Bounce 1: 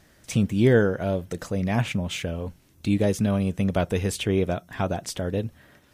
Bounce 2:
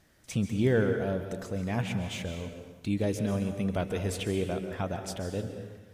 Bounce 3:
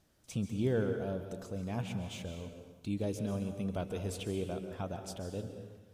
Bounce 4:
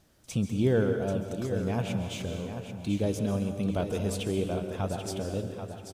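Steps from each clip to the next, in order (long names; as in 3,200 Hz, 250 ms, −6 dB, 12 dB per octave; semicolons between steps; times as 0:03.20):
dense smooth reverb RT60 1.3 s, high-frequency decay 0.85×, pre-delay 120 ms, DRR 6.5 dB; level −7 dB
parametric band 1,900 Hz −9 dB 0.53 octaves; level −6 dB
repeating echo 787 ms, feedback 28%, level −9 dB; level +6.5 dB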